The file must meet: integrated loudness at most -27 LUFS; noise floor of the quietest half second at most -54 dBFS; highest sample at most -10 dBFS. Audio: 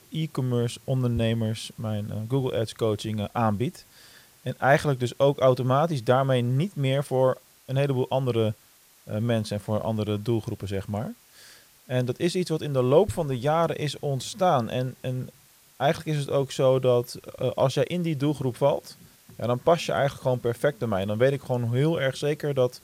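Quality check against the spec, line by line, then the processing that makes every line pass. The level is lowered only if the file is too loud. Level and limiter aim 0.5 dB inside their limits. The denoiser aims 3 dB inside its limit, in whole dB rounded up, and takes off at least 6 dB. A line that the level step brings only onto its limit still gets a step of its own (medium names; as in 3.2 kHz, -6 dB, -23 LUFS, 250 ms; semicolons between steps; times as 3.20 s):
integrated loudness -25.5 LUFS: fail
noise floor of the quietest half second -57 dBFS: pass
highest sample -7.0 dBFS: fail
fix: trim -2 dB; peak limiter -10.5 dBFS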